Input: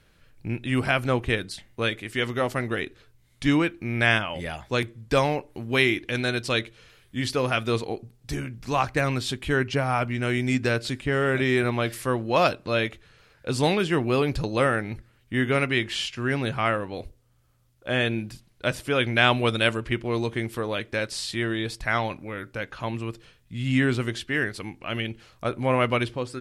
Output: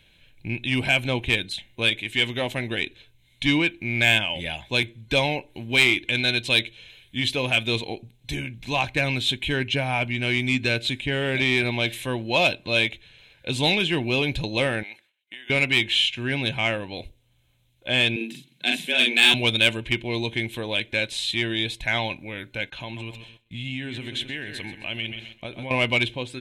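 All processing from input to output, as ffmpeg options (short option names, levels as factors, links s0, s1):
-filter_complex "[0:a]asettb=1/sr,asplit=3[s0][s1][s2];[s0]atrim=end=14.834[s3];[s1]atrim=start=14.83:end=15.5,asetpts=PTS-STARTPTS,afade=t=in:d=0.004:c=qsin,afade=t=out:st=0.666:d=0.004:c=qsin,agate=range=0.0224:threshold=0.00282:ratio=3:release=100:detection=peak,highpass=670,acompressor=threshold=0.0112:ratio=20:attack=3.2:release=140:knee=1:detection=peak[s4];[s2]atrim=start=15.496[s5];[s3][s4]acrossfade=d=0.004:c1=hsin:c2=qsin[s6];[s6][s5]acrossfade=d=0.004:c1=qsin:c2=hsin,asettb=1/sr,asplit=3[s7][s8][s9];[s7]atrim=end=18.164[s10];[s8]atrim=start=18.16:end=19.34,asetpts=PTS-STARTPTS,afade=t=in:d=0.004:c=qsin,afade=t=out:st=1.176:d=0.004:c=qsin,equalizer=f=540:t=o:w=1.4:g=-9.5,afreqshift=120,asplit=2[s11][s12];[s12]adelay=44,volume=0.75[s13];[s11][s13]amix=inputs=2:normalize=0,atrim=end_sample=52038[s14];[s9]atrim=start=19.336[s15];[s10][s14]acrossfade=d=0.004:c1=hsin:c2=qsin[s16];[s16][s15]acrossfade=d=0.004:c1=qsin:c2=hsin,asettb=1/sr,asplit=3[s17][s18][s19];[s17]atrim=end=22.704[s20];[s18]atrim=start=22.7:end=25.71,asetpts=PTS-STARTPTS,afade=t=in:d=0.004:c=qsin,afade=t=out:st=3.006:d=0.004:c=qsin,aecho=1:1:130|260|390|520:0.224|0.0985|0.0433|0.0191,atrim=end_sample=132741,acompressor=threshold=0.0316:ratio=4:attack=3.2:release=140:knee=1:detection=peak,agate=range=0.0224:threshold=0.00501:ratio=3:release=100:detection=peak[s21];[s19]atrim=start=25.706[s22];[s20][s21]acrossfade=d=0.004:c1=hsin:c2=qsin[s23];[s23][s22]acrossfade=d=0.004:c1=qsin:c2=hsin,superequalizer=7b=0.708:10b=0.316:12b=3.16:13b=3.55:14b=0.562,acontrast=60,volume=0.447"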